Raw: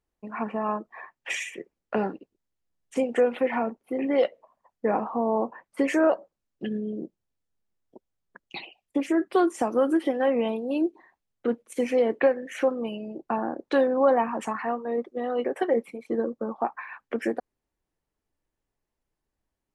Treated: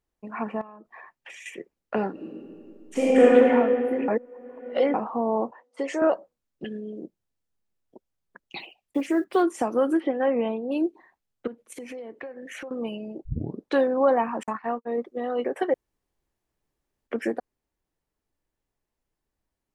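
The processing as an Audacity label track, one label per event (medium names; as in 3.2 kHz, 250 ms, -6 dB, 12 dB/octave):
0.610000	1.460000	compression 16:1, threshold -40 dBFS
2.120000	3.350000	reverb throw, RT60 2.6 s, DRR -9 dB
4.080000	4.940000	reverse
5.510000	6.020000	cabinet simulation 440–7800 Hz, peaks and dips at 1.1 kHz -4 dB, 1.6 kHz -9 dB, 2.4 kHz -8 dB
6.640000	7.040000	high-pass 350 Hz 6 dB/octave
8.590000	9.440000	block-companded coder 7-bit
10.000000	10.720000	low-pass 2.6 kHz
11.470000	12.710000	compression 10:1, threshold -35 dBFS
13.250000	13.250000	tape start 0.43 s
14.430000	15.030000	gate -33 dBFS, range -55 dB
15.740000	17.070000	room tone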